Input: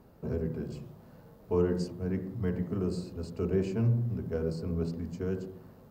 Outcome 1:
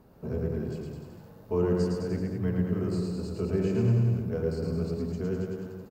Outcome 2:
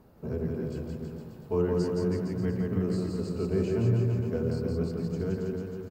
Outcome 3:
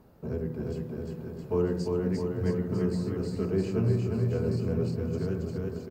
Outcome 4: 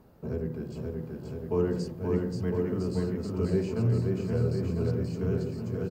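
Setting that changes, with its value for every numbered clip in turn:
bouncing-ball echo, first gap: 110 ms, 170 ms, 350 ms, 530 ms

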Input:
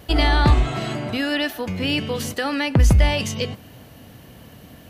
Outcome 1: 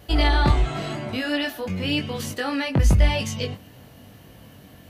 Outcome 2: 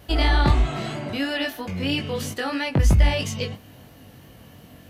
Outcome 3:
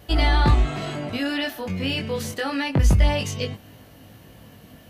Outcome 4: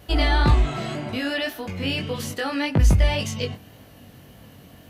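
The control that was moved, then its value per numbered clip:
chorus, rate: 0.92 Hz, 3 Hz, 0.24 Hz, 1.8 Hz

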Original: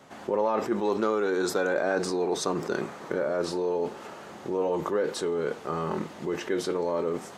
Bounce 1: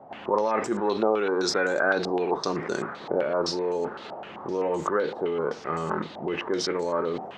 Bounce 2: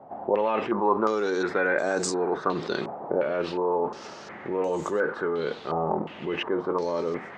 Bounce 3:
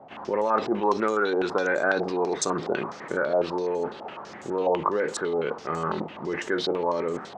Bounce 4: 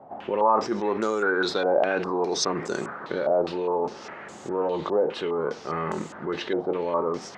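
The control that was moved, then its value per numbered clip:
step-sequenced low-pass, rate: 7.8 Hz, 2.8 Hz, 12 Hz, 4.9 Hz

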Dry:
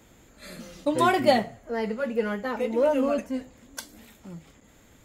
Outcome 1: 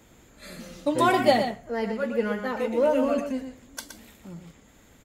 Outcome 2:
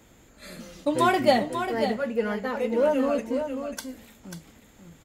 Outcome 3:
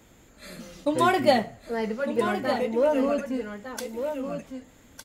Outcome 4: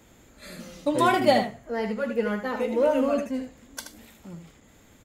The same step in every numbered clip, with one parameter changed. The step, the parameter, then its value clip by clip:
delay, time: 119 ms, 541 ms, 1207 ms, 77 ms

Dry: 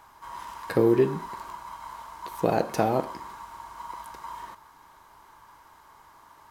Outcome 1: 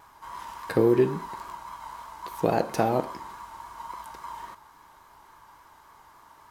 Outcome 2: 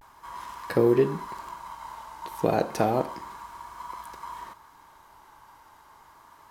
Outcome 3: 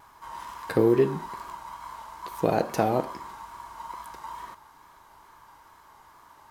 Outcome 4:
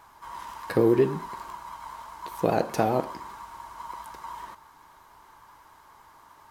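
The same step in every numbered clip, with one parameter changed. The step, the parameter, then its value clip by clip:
vibrato, rate: 3.6 Hz, 0.32 Hz, 2.3 Hz, 10 Hz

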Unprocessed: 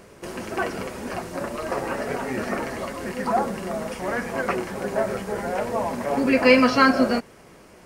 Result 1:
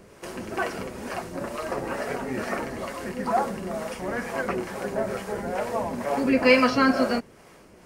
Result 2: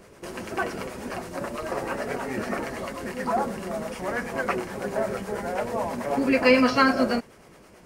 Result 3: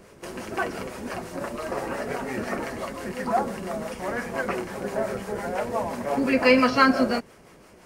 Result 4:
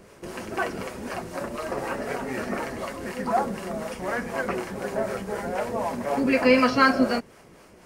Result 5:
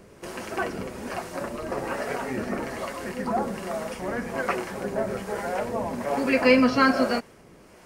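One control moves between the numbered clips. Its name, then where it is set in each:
harmonic tremolo, rate: 2.2 Hz, 9.2 Hz, 5.8 Hz, 4 Hz, 1.2 Hz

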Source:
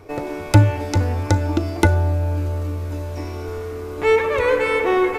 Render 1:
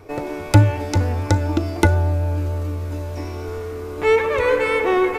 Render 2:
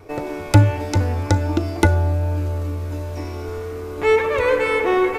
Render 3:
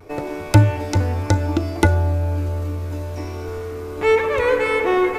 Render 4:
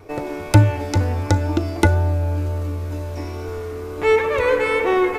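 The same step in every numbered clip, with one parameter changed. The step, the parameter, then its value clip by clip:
vibrato, rate: 6.8 Hz, 1.4 Hz, 0.37 Hz, 2.1 Hz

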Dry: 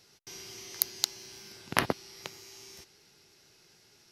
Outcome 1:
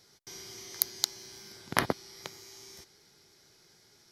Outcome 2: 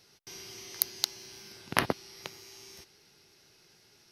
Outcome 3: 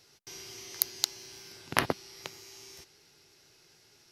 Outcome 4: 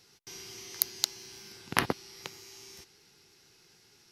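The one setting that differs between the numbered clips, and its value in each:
band-stop, frequency: 2.7 kHz, 7.3 kHz, 200 Hz, 610 Hz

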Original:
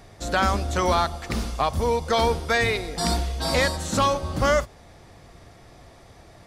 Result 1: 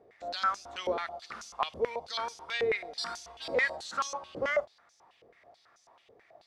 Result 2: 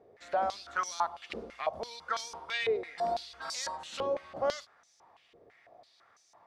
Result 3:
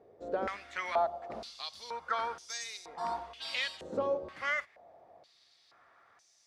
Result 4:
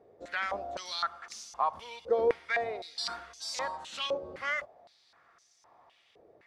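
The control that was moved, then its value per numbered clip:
step-sequenced band-pass, rate: 9.2 Hz, 6 Hz, 2.1 Hz, 3.9 Hz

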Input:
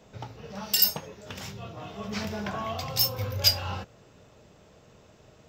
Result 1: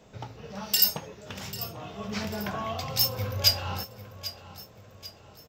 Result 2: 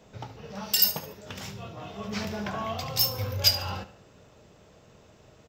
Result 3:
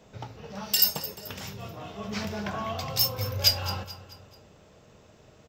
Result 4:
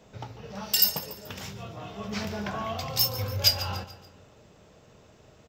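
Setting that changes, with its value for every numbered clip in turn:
feedback delay, time: 793 ms, 72 ms, 217 ms, 144 ms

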